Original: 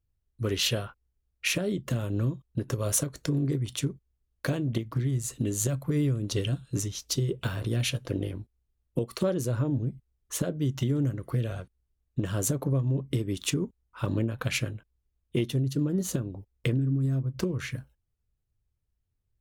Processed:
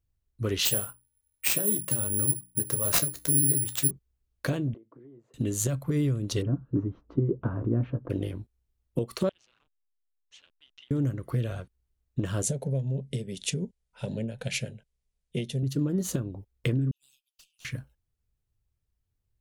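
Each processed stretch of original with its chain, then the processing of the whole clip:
0:00.65–0:03.91: mains-hum notches 60/120/180/240/300 Hz + tuned comb filter 69 Hz, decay 0.16 s, mix 70% + bad sample-rate conversion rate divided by 4×, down none, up zero stuff
0:04.74–0:05.34: phase distortion by the signal itself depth 0.06 ms + four-pole ladder band-pass 470 Hz, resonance 30% + downward compressor 5 to 1, threshold −46 dBFS
0:06.42–0:08.10: Chebyshev low-pass filter 1,200 Hz, order 3 + parametric band 280 Hz +8.5 dB 0.74 octaves
0:09.29–0:10.91: four-pole ladder band-pass 3,300 Hz, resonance 50% + slack as between gear wheels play −56 dBFS + high-frequency loss of the air 110 metres
0:12.42–0:15.63: phaser with its sweep stopped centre 310 Hz, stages 6 + bad sample-rate conversion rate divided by 2×, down none, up filtered
0:16.91–0:17.65: Butterworth high-pass 2,600 Hz 96 dB per octave + tube saturation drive 52 dB, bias 0.35
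whole clip: no processing

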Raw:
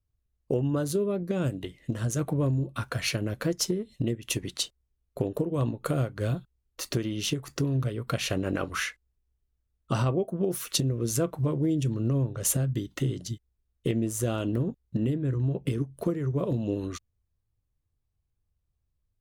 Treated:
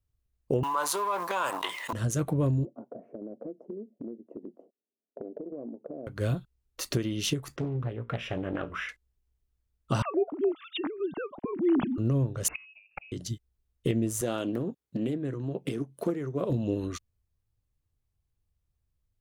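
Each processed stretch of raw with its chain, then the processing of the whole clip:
0:00.63–0:01.93: mu-law and A-law mismatch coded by A + high-pass with resonance 990 Hz, resonance Q 10 + envelope flattener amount 70%
0:02.65–0:06.07: elliptic band-pass filter 220–690 Hz, stop band 70 dB + downward compressor 4 to 1, threshold −36 dBFS
0:07.56–0:08.89: Savitzky-Golay smoothing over 25 samples + tuned comb filter 58 Hz, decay 0.25 s + highs frequency-modulated by the lows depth 0.53 ms
0:10.02–0:11.98: three sine waves on the formant tracks + parametric band 510 Hz −11 dB 0.43 octaves
0:12.48–0:13.12: voice inversion scrambler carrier 2,700 Hz + gate with flip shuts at −23 dBFS, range −26 dB
0:14.21–0:16.50: high-pass filter 210 Hz + highs frequency-modulated by the lows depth 0.14 ms
whole clip: no processing

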